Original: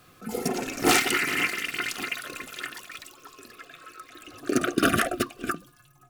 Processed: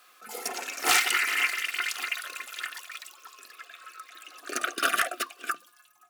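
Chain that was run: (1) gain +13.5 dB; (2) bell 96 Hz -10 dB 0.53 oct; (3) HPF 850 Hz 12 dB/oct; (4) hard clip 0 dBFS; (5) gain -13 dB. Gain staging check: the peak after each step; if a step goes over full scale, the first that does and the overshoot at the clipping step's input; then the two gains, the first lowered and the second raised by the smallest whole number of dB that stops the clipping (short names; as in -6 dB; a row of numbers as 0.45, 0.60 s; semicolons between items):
+8.5, +8.5, +8.0, 0.0, -13.0 dBFS; step 1, 8.0 dB; step 1 +5.5 dB, step 5 -5 dB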